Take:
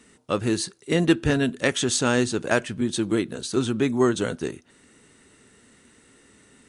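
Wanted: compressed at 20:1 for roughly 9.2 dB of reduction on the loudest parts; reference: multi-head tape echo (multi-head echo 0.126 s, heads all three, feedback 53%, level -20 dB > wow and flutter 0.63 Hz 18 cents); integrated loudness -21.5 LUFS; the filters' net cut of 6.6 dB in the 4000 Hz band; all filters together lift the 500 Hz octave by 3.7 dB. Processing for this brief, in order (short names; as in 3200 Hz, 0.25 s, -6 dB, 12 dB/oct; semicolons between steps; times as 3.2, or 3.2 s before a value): bell 500 Hz +5 dB; bell 4000 Hz -8.5 dB; compressor 20:1, threshold -21 dBFS; multi-head echo 0.126 s, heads all three, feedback 53%, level -20 dB; wow and flutter 0.63 Hz 18 cents; gain +6 dB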